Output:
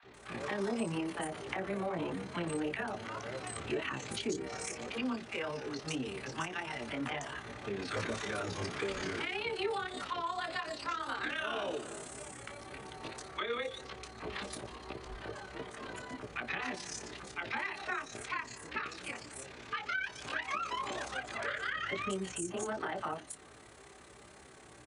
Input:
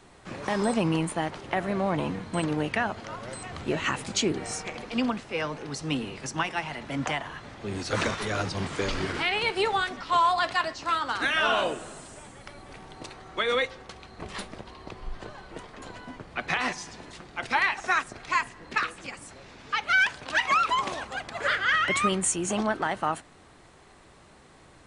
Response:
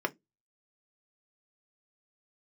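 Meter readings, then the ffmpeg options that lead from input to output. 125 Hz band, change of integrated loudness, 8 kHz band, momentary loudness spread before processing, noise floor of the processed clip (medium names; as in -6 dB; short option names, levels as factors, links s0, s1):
-10.0 dB, -10.5 dB, -9.5 dB, 20 LU, -55 dBFS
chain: -filter_complex "[0:a]highshelf=f=3200:g=11,acrossover=split=860|4400[s0][s1][s2];[s0]adelay=30[s3];[s2]adelay=140[s4];[s3][s1][s4]amix=inputs=3:normalize=0,asplit=2[s5][s6];[1:a]atrim=start_sample=2205,asetrate=52920,aresample=44100[s7];[s6][s7]afir=irnorm=-1:irlink=0,volume=0.237[s8];[s5][s8]amix=inputs=2:normalize=0,acrossover=split=460[s9][s10];[s10]acompressor=threshold=0.0501:ratio=3[s11];[s9][s11]amix=inputs=2:normalize=0,flanger=delay=15:depth=2.7:speed=1.8,acrossover=split=1200[s12][s13];[s13]tremolo=f=34:d=0.71[s14];[s12][s14]amix=inputs=2:normalize=0,highpass=51,acompressor=threshold=0.0141:ratio=2,adynamicequalizer=threshold=0.00178:dfrequency=4700:dqfactor=0.7:tfrequency=4700:tqfactor=0.7:attack=5:release=100:ratio=0.375:range=2:mode=cutabove:tftype=highshelf"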